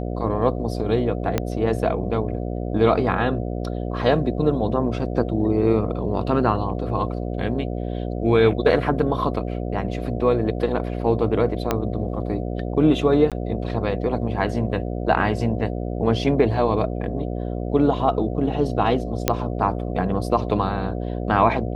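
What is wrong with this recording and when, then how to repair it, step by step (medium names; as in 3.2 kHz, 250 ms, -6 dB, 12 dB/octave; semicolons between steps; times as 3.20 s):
buzz 60 Hz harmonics 12 -27 dBFS
1.38 s: pop -7 dBFS
11.71 s: pop -6 dBFS
13.30–13.32 s: dropout 17 ms
19.28 s: pop -2 dBFS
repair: de-click; de-hum 60 Hz, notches 12; interpolate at 13.30 s, 17 ms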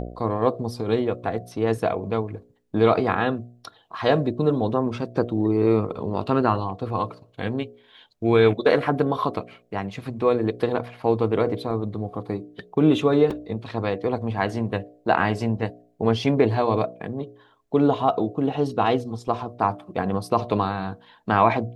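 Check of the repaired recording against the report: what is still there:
1.38 s: pop
11.71 s: pop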